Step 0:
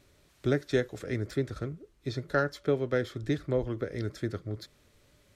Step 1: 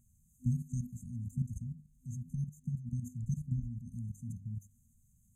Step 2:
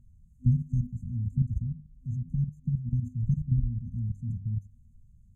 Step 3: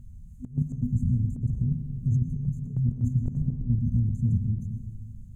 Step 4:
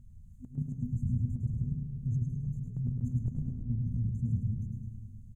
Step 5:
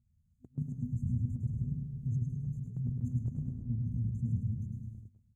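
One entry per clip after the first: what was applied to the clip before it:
mains-hum notches 50/100/150/200/250 Hz; output level in coarse steps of 14 dB; brick-wall band-stop 250–6,200 Hz; level +5 dB
RIAA equalisation playback; level −2.5 dB
compressor whose output falls as the input rises −32 dBFS, ratio −0.5; on a send at −7.5 dB: convolution reverb RT60 2.2 s, pre-delay 103 ms; on the sum: level +7 dB
repeating echo 105 ms, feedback 46%, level −5 dB; level −8 dB
noise gate −42 dBFS, range −15 dB; high-pass filter 55 Hz; level −1.5 dB

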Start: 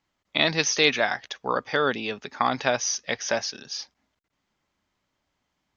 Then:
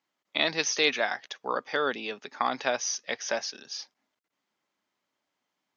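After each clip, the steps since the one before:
high-pass filter 250 Hz 12 dB per octave
level −4 dB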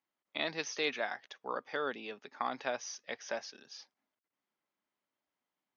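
high-shelf EQ 4,500 Hz −9 dB
level −7.5 dB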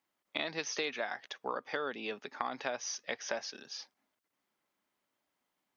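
downward compressor 6 to 1, threshold −38 dBFS, peak gain reduction 10 dB
level +6 dB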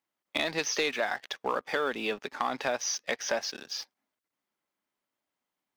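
leveller curve on the samples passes 2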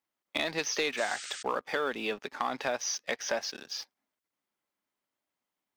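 sound drawn into the spectrogram noise, 0:00.97–0:01.43, 1,200–8,900 Hz −41 dBFS
level −1.5 dB

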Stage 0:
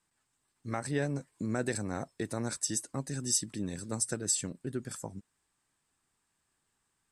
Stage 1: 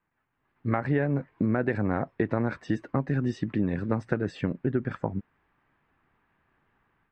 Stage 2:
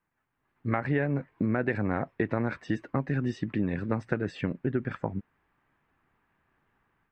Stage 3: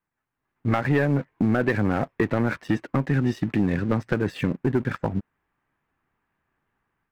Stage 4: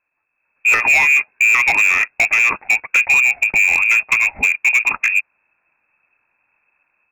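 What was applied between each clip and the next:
automatic gain control gain up to 9.5 dB; low-pass filter 2,300 Hz 24 dB per octave; downward compressor 6 to 1, threshold −24 dBFS, peak gain reduction 8 dB; level +3 dB
dynamic equaliser 2,400 Hz, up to +5 dB, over −48 dBFS, Q 1.2; level −2 dB
leveller curve on the samples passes 2
low-shelf EQ 110 Hz +9.5 dB; voice inversion scrambler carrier 2,600 Hz; gain into a clipping stage and back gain 15.5 dB; level +7 dB

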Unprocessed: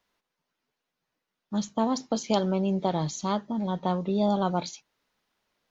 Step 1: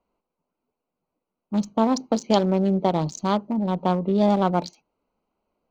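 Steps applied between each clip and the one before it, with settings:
adaptive Wiener filter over 25 samples
parametric band 130 Hz −15 dB 0.22 octaves
level +6 dB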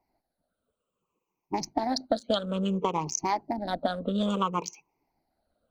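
rippled gain that drifts along the octave scale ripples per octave 0.75, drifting −0.59 Hz, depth 21 dB
harmonic and percussive parts rebalanced harmonic −14 dB
downward compressor 4 to 1, threshold −27 dBFS, peak gain reduction 12 dB
level +2.5 dB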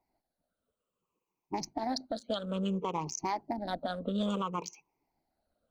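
brickwall limiter −18.5 dBFS, peak gain reduction 7.5 dB
level −4 dB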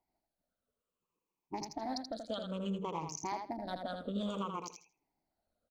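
repeating echo 81 ms, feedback 17%, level −6 dB
level −5.5 dB

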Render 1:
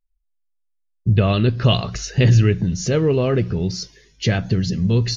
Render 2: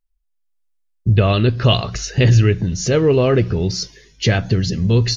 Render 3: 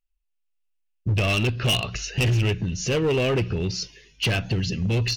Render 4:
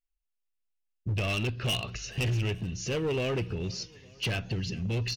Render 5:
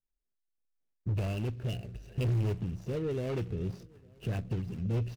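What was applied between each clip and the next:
dynamic equaliser 180 Hz, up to −5 dB, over −30 dBFS, Q 1.7; automatic gain control gain up to 4.5 dB; level +1 dB
parametric band 2,700 Hz +12.5 dB 0.41 octaves; hard clipping −11.5 dBFS, distortion −10 dB; level −6.5 dB
repeating echo 429 ms, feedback 59%, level −23 dB; level −7.5 dB
running median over 41 samples; rotating-speaker cabinet horn 0.7 Hz, later 5 Hz, at 0:03.00

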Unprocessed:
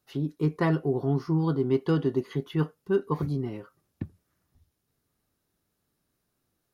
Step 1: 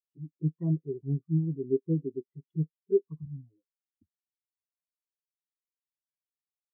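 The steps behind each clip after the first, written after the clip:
flanger swept by the level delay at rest 11.5 ms, full sweep at −21 dBFS
every bin expanded away from the loudest bin 2.5 to 1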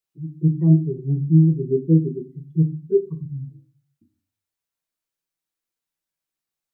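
convolution reverb RT60 0.30 s, pre-delay 5 ms, DRR 4 dB
level +7 dB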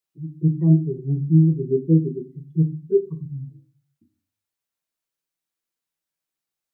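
low-shelf EQ 68 Hz −6 dB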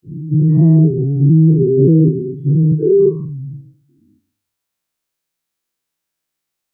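every bin's largest magnitude spread in time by 240 ms
level +2.5 dB

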